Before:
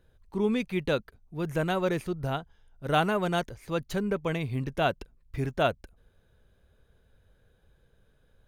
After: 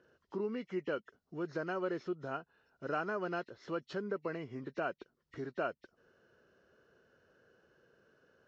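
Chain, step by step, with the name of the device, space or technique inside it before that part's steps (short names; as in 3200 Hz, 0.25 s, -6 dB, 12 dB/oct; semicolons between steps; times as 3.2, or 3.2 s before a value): hearing aid with frequency lowering (nonlinear frequency compression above 1800 Hz 1.5:1; compressor 2.5:1, threshold -42 dBFS, peak gain reduction 14.5 dB; speaker cabinet 260–5300 Hz, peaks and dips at 360 Hz +4 dB, 830 Hz -5 dB, 1400 Hz +5 dB, 2300 Hz -9 dB, 3300 Hz -4 dB); gain +3 dB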